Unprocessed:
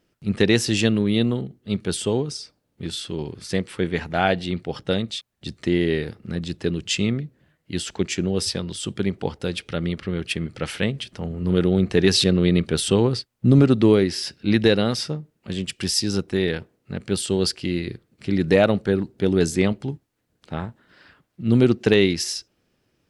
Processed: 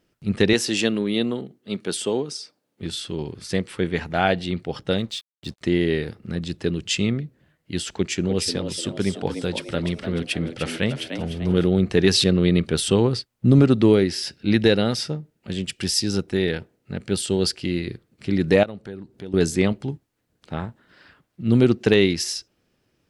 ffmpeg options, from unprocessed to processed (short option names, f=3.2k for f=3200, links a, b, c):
-filter_complex "[0:a]asettb=1/sr,asplit=3[a][b][c];[a]atrim=end=0.534[d];[b]atrim=start=0.53:end=2.82,asetpts=PTS-STARTPTS,afade=t=in:d=0.004:c=qsin,afade=t=out:st=2.286:d=0.004:c=qsin,highpass=230[e];[c]atrim=start=2.816[f];[d][e]acrossfade=d=0.004:c1=hsin:c2=qsin[g];[g][f]acrossfade=d=0.004:c1=qsin:c2=hsin,asettb=1/sr,asplit=3[h][i][j];[h]atrim=end=4.974[k];[i]atrim=start=4.97:end=5.61,asetpts=PTS-STARTPTS,afade=t=in:d=0.004:c=qsin,afade=t=out:st=0.636:d=0.004:c=qsin,aeval=exprs='sgn(val(0))*max(abs(val(0))-0.00282,0)':c=same[l];[j]atrim=start=5.606[m];[k][l]acrossfade=d=0.004:c1=hsin:c2=qsin[n];[n][m]acrossfade=d=0.004:c1=qsin:c2=hsin,asettb=1/sr,asplit=3[o][p][q];[o]atrim=end=7.904[r];[p]atrim=start=7.9:end=11.67,asetpts=PTS-STARTPTS,afade=t=in:d=0.004:c=qsin,afade=t=out:st=3.766:d=0.004:c=qsin,asplit=6[s][t][u][v][w][x];[t]adelay=299,afreqshift=79,volume=-8.5dB[y];[u]adelay=598,afreqshift=158,volume=-16dB[z];[v]adelay=897,afreqshift=237,volume=-23.6dB[aa];[w]adelay=1196,afreqshift=316,volume=-31.1dB[ab];[x]adelay=1495,afreqshift=395,volume=-38.6dB[ac];[s][y][z][aa][ab][ac]amix=inputs=6:normalize=0,atrim=end_sample=166257[ad];[q]atrim=start=11.666[ae];[r][ad]acrossfade=d=0.004:c1=hsin:c2=qsin[af];[af][ae]acrossfade=d=0.004:c1=qsin:c2=hsin,asettb=1/sr,asplit=3[ag][ah][ai];[ag]atrim=end=13.894[aj];[ah]atrim=start=13.89:end=17.6,asetpts=PTS-STARTPTS,afade=t=in:d=0.004:c=qsin,afade=t=out:st=3.706:d=0.004:c=qsin,bandreject=f=1.1k:w=8.9[ak];[ai]atrim=start=17.596[al];[aj][ak]acrossfade=d=0.004:c1=hsin:c2=qsin[am];[am][al]acrossfade=d=0.004:c1=qsin:c2=hsin,asettb=1/sr,asplit=3[an][ao][ap];[an]atrim=end=18.634[aq];[ao]atrim=start=18.63:end=19.34,asetpts=PTS-STARTPTS,afade=t=in:d=0.004:c=qsin,afade=t=out:st=0.706:d=0.004:c=qsin,acompressor=threshold=-43dB:ratio=2:attack=3.2:release=140:knee=1:detection=peak[ar];[ap]atrim=start=19.336[as];[aq][ar]acrossfade=d=0.004:c1=hsin:c2=qsin[at];[at][as]acrossfade=d=0.004:c1=qsin:c2=hsin"